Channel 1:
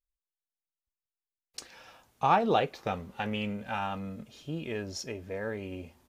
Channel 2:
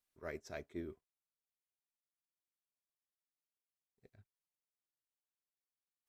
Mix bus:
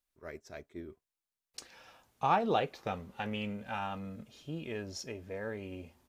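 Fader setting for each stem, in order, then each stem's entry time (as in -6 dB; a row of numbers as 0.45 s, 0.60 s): -4.0 dB, -0.5 dB; 0.00 s, 0.00 s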